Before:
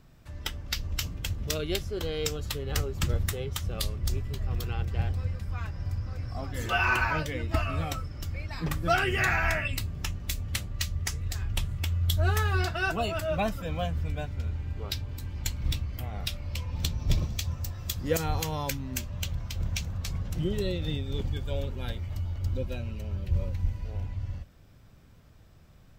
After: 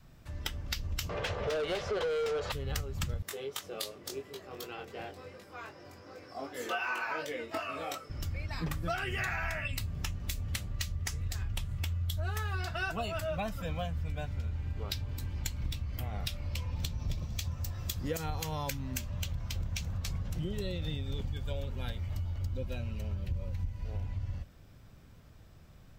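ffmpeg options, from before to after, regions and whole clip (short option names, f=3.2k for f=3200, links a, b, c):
-filter_complex "[0:a]asettb=1/sr,asplit=3[a][b][c];[a]atrim=end=1.094[d];[b]atrim=start=1.09:end=2.52,asetpts=PTS-STARTPTS,afade=t=in:d=0.004:c=qsin,afade=t=out:st=1.426:d=0.004:c=qsin,lowpass=5.8k,lowshelf=f=360:t=q:w=3:g=-8,asplit=2[e][f];[f]highpass=f=720:p=1,volume=30dB,asoftclip=type=tanh:threshold=-14.5dB[g];[e][g]amix=inputs=2:normalize=0,lowpass=f=1.1k:p=1,volume=-6dB[h];[c]atrim=start=2.516[i];[d][h]acrossfade=d=0.004:c1=hsin:c2=qsin[j];[j][i]acrossfade=d=0.004:c1=qsin:c2=hsin,asettb=1/sr,asplit=3[k][l][m];[k]atrim=end=3.224[n];[l]atrim=start=3.22:end=8.1,asetpts=PTS-STARTPTS,afade=t=in:d=0.004:c=qsin,afade=t=out:st=4.876:d=0.004:c=qsin,flanger=delay=20:depth=2.5:speed=2.7,highpass=f=380:t=q:w=1.9[o];[m]atrim=start=8.096[p];[n][o]acrossfade=d=0.004:c1=hsin:c2=qsin[q];[q][p]acrossfade=d=0.004:c1=qsin:c2=hsin,adynamicequalizer=threshold=0.00316:dfrequency=350:dqfactor=2.2:tfrequency=350:tqfactor=2.2:attack=5:release=100:ratio=0.375:range=3:mode=cutabove:tftype=bell,acompressor=threshold=-31dB:ratio=6"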